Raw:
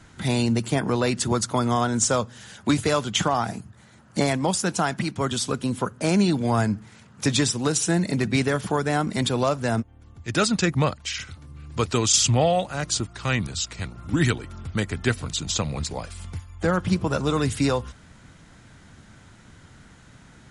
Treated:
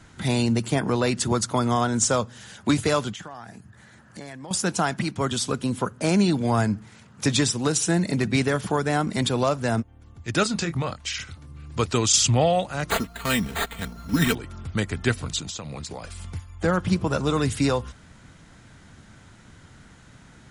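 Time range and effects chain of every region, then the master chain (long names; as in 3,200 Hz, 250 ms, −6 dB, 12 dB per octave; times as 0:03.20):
0:03.13–0:04.51: parametric band 1,700 Hz +10 dB 0.24 octaves + downward compressor 2.5 to 1, threshold −44 dBFS
0:10.43–0:11.08: downward compressor 4 to 1, threshold −23 dBFS + double-tracking delay 24 ms −8 dB
0:12.90–0:14.35: bad sample-rate conversion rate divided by 8×, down none, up hold + comb filter 4.4 ms, depth 71%
0:15.40–0:16.05: high-pass filter 110 Hz 6 dB per octave + downward compressor 12 to 1, threshold −30 dBFS
whole clip: no processing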